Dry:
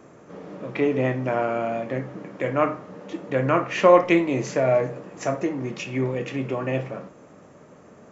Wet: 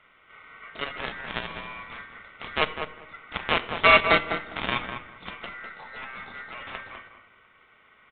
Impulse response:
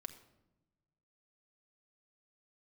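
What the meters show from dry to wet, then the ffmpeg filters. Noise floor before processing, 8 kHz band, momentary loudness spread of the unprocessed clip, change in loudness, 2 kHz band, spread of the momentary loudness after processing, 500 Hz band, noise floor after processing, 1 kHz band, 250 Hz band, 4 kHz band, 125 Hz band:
−50 dBFS, can't be measured, 19 LU, −1.5 dB, +5.5 dB, 23 LU, −10.5 dB, −59 dBFS, −1.5 dB, −14.0 dB, +10.0 dB, −13.5 dB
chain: -filter_complex "[0:a]lowpass=frequency=2800:poles=1,equalizer=frequency=2200:width_type=o:width=1.3:gain=8,aeval=exprs='val(0)*sin(2*PI*1700*n/s)':channel_layout=same,aeval=exprs='0.794*(cos(1*acos(clip(val(0)/0.794,-1,1)))-cos(1*PI/2))+0.0158*(cos(4*acos(clip(val(0)/0.794,-1,1)))-cos(4*PI/2))+0.0224*(cos(5*acos(clip(val(0)/0.794,-1,1)))-cos(5*PI/2))+0.158*(cos(7*acos(clip(val(0)/0.794,-1,1)))-cos(7*PI/2))':channel_layout=same,aresample=8000,asoftclip=type=hard:threshold=-12.5dB,aresample=44100,asplit=2[link_01][link_02];[link_02]adelay=201,lowpass=frequency=1800:poles=1,volume=-6.5dB,asplit=2[link_03][link_04];[link_04]adelay=201,lowpass=frequency=1800:poles=1,volume=0.18,asplit=2[link_05][link_06];[link_06]adelay=201,lowpass=frequency=1800:poles=1,volume=0.18[link_07];[link_01][link_03][link_05][link_07]amix=inputs=4:normalize=0,asplit=2[link_08][link_09];[1:a]atrim=start_sample=2205,lowpass=5200[link_10];[link_09][link_10]afir=irnorm=-1:irlink=0,volume=2dB[link_11];[link_08][link_11]amix=inputs=2:normalize=0"

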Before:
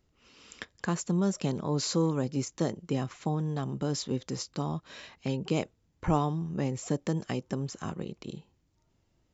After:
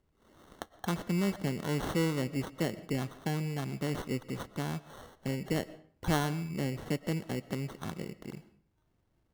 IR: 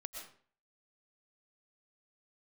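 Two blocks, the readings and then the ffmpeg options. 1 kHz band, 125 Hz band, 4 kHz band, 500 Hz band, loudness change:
−3.5 dB, −2.5 dB, −2.5 dB, −3.0 dB, −2.5 dB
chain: -filter_complex "[0:a]acrusher=samples=18:mix=1:aa=0.000001,asplit=2[link_01][link_02];[1:a]atrim=start_sample=2205,highshelf=frequency=5600:gain=-8[link_03];[link_02][link_03]afir=irnorm=-1:irlink=0,volume=-8dB[link_04];[link_01][link_04]amix=inputs=2:normalize=0,volume=-4.5dB"

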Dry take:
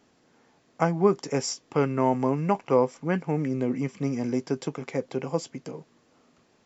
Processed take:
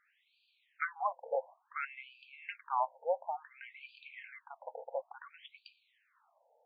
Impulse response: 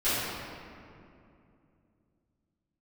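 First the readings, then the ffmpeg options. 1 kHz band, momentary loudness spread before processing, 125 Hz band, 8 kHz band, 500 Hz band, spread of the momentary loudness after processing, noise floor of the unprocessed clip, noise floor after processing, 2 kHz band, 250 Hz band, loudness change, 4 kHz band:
−7.0 dB, 9 LU, below −40 dB, can't be measured, −14.5 dB, 17 LU, −64 dBFS, −76 dBFS, −4.0 dB, below −40 dB, −12.5 dB, −16.0 dB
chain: -af "equalizer=frequency=1200:width_type=o:width=0.46:gain=-6,afftfilt=real='re*between(b*sr/1024,650*pow(3400/650,0.5+0.5*sin(2*PI*0.57*pts/sr))/1.41,650*pow(3400/650,0.5+0.5*sin(2*PI*0.57*pts/sr))*1.41)':imag='im*between(b*sr/1024,650*pow(3400/650,0.5+0.5*sin(2*PI*0.57*pts/sr))/1.41,650*pow(3400/650,0.5+0.5*sin(2*PI*0.57*pts/sr))*1.41)':win_size=1024:overlap=0.75,volume=1dB"

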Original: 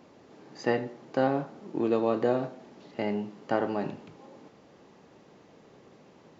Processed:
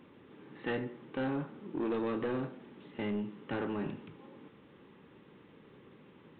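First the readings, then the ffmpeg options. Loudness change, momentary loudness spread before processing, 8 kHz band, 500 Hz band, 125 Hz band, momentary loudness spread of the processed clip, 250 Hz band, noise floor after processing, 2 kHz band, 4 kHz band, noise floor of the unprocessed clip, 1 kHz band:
−7.0 dB, 12 LU, can't be measured, −9.0 dB, −3.5 dB, 20 LU, −4.5 dB, −59 dBFS, −4.5 dB, −4.5 dB, −57 dBFS, −10.0 dB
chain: -af "equalizer=frequency=680:width=2.5:gain=-13.5,aresample=8000,asoftclip=type=tanh:threshold=-28.5dB,aresample=44100"

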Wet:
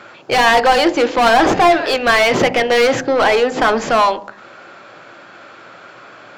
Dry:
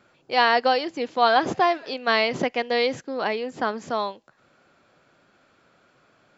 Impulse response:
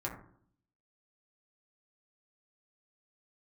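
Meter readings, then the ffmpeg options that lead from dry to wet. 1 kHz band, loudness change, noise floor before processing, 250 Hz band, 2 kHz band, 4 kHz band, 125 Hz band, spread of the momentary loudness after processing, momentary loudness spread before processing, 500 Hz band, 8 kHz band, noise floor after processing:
+9.0 dB, +9.5 dB, −62 dBFS, +11.5 dB, +10.0 dB, +8.5 dB, +12.0 dB, 4 LU, 9 LU, +10.5 dB, can't be measured, −41 dBFS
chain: -filter_complex "[0:a]asplit=2[link_01][link_02];[link_02]highpass=frequency=720:poles=1,volume=30dB,asoftclip=type=tanh:threshold=-4.5dB[link_03];[link_01][link_03]amix=inputs=2:normalize=0,lowpass=frequency=2400:poles=1,volume=-6dB,bandreject=frequency=50.97:width_type=h:width=4,bandreject=frequency=101.94:width_type=h:width=4,bandreject=frequency=152.91:width_type=h:width=4,bandreject=frequency=203.88:width_type=h:width=4,bandreject=frequency=254.85:width_type=h:width=4,bandreject=frequency=305.82:width_type=h:width=4,bandreject=frequency=356.79:width_type=h:width=4,bandreject=frequency=407.76:width_type=h:width=4,bandreject=frequency=458.73:width_type=h:width=4,bandreject=frequency=509.7:width_type=h:width=4,bandreject=frequency=560.67:width_type=h:width=4,bandreject=frequency=611.64:width_type=h:width=4,bandreject=frequency=662.61:width_type=h:width=4,bandreject=frequency=713.58:width_type=h:width=4,bandreject=frequency=764.55:width_type=h:width=4,bandreject=frequency=815.52:width_type=h:width=4,bandreject=frequency=866.49:width_type=h:width=4,bandreject=frequency=917.46:width_type=h:width=4,bandreject=frequency=968.43:width_type=h:width=4,asplit=2[link_04][link_05];[1:a]atrim=start_sample=2205,lowshelf=frequency=410:gain=8[link_06];[link_05][link_06]afir=irnorm=-1:irlink=0,volume=-16dB[link_07];[link_04][link_07]amix=inputs=2:normalize=0"

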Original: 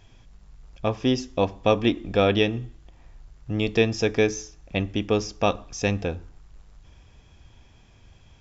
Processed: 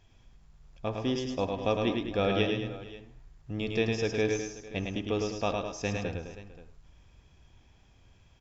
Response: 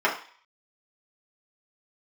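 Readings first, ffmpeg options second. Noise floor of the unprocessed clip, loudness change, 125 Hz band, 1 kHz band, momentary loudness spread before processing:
−54 dBFS, −6.5 dB, −6.5 dB, −6.5 dB, 10 LU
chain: -filter_complex "[0:a]aecho=1:1:107|208|450|528:0.668|0.316|0.106|0.141,asplit=2[link_01][link_02];[1:a]atrim=start_sample=2205,adelay=68[link_03];[link_02][link_03]afir=irnorm=-1:irlink=0,volume=-28.5dB[link_04];[link_01][link_04]amix=inputs=2:normalize=0,volume=-8.5dB"

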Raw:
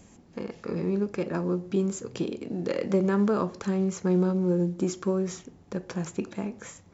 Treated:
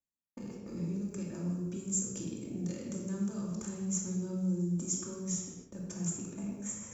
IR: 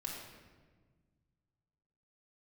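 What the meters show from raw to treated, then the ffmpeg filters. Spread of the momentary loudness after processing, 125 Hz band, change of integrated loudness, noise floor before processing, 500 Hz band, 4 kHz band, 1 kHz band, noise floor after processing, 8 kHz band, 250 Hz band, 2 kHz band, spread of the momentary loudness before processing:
10 LU, −6.5 dB, −8.0 dB, −55 dBFS, −16.5 dB, −6.0 dB, −18.0 dB, −85 dBFS, can't be measured, −8.0 dB, −15.0 dB, 13 LU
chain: -filter_complex "[0:a]acrossover=split=3600[link_01][link_02];[link_01]alimiter=level_in=0.5dB:limit=-24dB:level=0:latency=1,volume=-0.5dB[link_03];[link_03][link_02]amix=inputs=2:normalize=0,acrossover=split=210|3000[link_04][link_05][link_06];[link_05]acompressor=threshold=-46dB:ratio=5[link_07];[link_04][link_07][link_06]amix=inputs=3:normalize=0,agate=range=-58dB:threshold=-45dB:ratio=16:detection=peak[link_08];[1:a]atrim=start_sample=2205,afade=type=out:start_time=0.37:duration=0.01,atrim=end_sample=16758[link_09];[link_08][link_09]afir=irnorm=-1:irlink=0,areverse,acompressor=mode=upward:threshold=-43dB:ratio=2.5,areverse,aexciter=amount=9.9:drive=7.1:freq=6400,highshelf=frequency=3000:gain=-9.5"

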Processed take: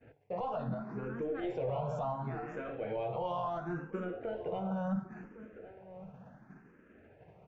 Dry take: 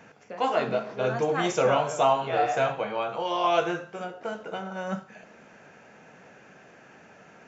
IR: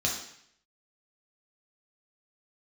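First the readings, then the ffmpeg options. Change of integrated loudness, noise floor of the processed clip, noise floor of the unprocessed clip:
−10.5 dB, −62 dBFS, −53 dBFS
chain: -filter_complex "[0:a]highshelf=frequency=3000:gain=-8.5,asplit=2[link_01][link_02];[link_02]asoftclip=type=tanh:threshold=-24dB,volume=-3.5dB[link_03];[link_01][link_03]amix=inputs=2:normalize=0,acompressor=threshold=-32dB:ratio=10,aemphasis=mode=reproduction:type=riaa,alimiter=level_in=2dB:limit=-24dB:level=0:latency=1:release=30,volume=-2dB,agate=range=-33dB:threshold=-35dB:ratio=3:detection=peak,asplit=2[link_04][link_05];[link_05]adelay=1108,volume=-13dB,highshelf=frequency=4000:gain=-24.9[link_06];[link_04][link_06]amix=inputs=2:normalize=0,asplit=2[link_07][link_08];[link_08]afreqshift=0.71[link_09];[link_07][link_09]amix=inputs=2:normalize=1"

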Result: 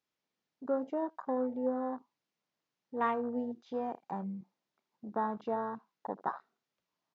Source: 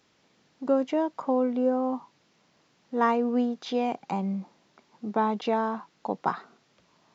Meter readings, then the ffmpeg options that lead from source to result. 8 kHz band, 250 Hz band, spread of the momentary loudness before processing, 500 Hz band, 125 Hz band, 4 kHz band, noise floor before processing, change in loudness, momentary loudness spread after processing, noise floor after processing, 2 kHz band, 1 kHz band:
can't be measured, −9.5 dB, 11 LU, −8.0 dB, −10.0 dB, below −15 dB, −67 dBFS, −8.0 dB, 12 LU, below −85 dBFS, −8.5 dB, −7.5 dB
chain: -af "lowshelf=frequency=360:gain=-5,aecho=1:1:31|79:0.133|0.158,afwtdn=0.0282,volume=-6.5dB"

